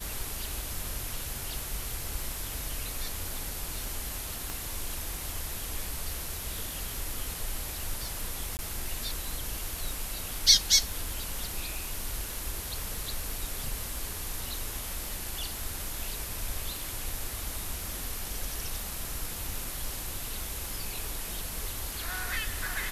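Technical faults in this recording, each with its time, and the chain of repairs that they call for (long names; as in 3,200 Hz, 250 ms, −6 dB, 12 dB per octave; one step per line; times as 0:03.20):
surface crackle 36 per second −37 dBFS
0:04.50: click
0:08.57–0:08.59: drop-out 19 ms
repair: click removal
repair the gap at 0:08.57, 19 ms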